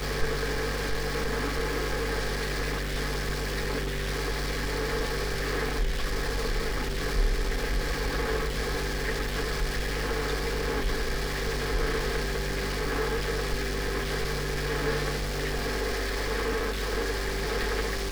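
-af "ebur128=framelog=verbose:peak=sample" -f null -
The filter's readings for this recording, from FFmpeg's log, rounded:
Integrated loudness:
  I:         -29.9 LUFS
  Threshold: -39.9 LUFS
Loudness range:
  LRA:         0.7 LU
  Threshold: -49.9 LUFS
  LRA low:   -30.3 LUFS
  LRA high:  -29.6 LUFS
Sample peak:
  Peak:      -13.8 dBFS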